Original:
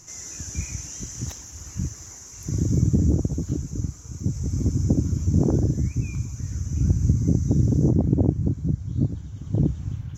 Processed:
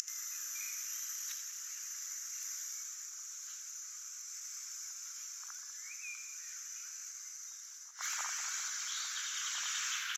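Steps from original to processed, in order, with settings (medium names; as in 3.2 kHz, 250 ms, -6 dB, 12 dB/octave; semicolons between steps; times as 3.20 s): tracing distortion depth 0.035 ms; steep high-pass 1.3 kHz 48 dB/octave; in parallel at +1 dB: compression, threshold -48 dBFS, peak gain reduction 13 dB; on the sum: inverted gate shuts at -38 dBFS, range -25 dB; gain riding within 3 dB 2 s; on a send: two-band feedback delay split 2.1 kHz, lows 195 ms, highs 81 ms, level -10 dB; on the sum: resampled via 32 kHz; trim +18 dB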